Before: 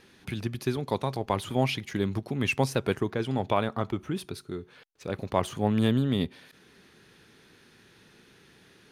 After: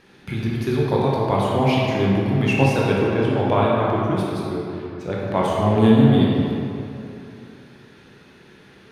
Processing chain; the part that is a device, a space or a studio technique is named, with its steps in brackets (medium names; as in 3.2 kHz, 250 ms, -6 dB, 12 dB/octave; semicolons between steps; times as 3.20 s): swimming-pool hall (reverberation RT60 2.8 s, pre-delay 15 ms, DRR -4.5 dB; treble shelf 4.4 kHz -8 dB); trim +3.5 dB